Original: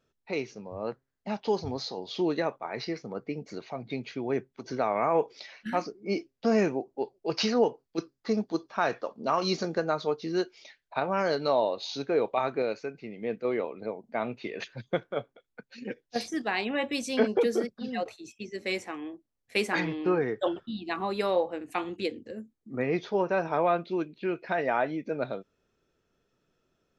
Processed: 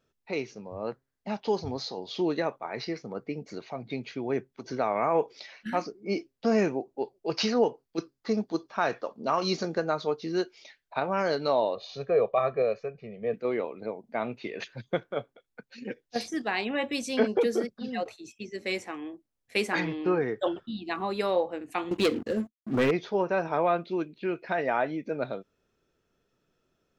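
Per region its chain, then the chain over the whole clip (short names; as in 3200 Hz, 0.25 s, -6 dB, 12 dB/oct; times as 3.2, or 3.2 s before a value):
11.75–13.34 LPF 1400 Hz 6 dB/oct + comb 1.7 ms, depth 96%
21.91–22.91 expander -52 dBFS + sample leveller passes 3
whole clip: dry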